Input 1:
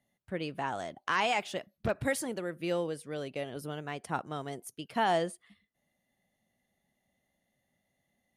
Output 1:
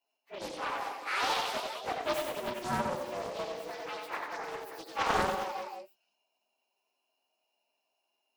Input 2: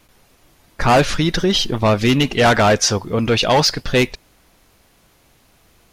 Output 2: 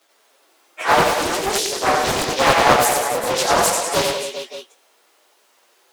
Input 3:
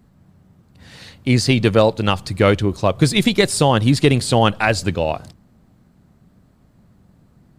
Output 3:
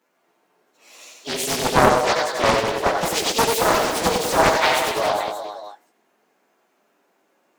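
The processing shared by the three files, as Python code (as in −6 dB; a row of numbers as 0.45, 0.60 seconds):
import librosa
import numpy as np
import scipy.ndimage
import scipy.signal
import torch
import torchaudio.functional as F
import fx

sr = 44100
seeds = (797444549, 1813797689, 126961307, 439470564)

y = fx.partial_stretch(x, sr, pct=116)
y = scipy.signal.sosfilt(scipy.signal.butter(4, 400.0, 'highpass', fs=sr, output='sos'), y)
y = fx.chorus_voices(y, sr, voices=4, hz=0.84, base_ms=21, depth_ms=2.5, mix_pct=30)
y = fx.echo_multitap(y, sr, ms=(90, 129, 191, 275, 402, 576), db=(-3.5, -16.5, -8.5, -10.5, -10.5, -14.5))
y = fx.doppler_dist(y, sr, depth_ms=0.87)
y = y * 10.0 ** (4.0 / 20.0)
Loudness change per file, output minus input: −0.5, −1.5, −2.5 LU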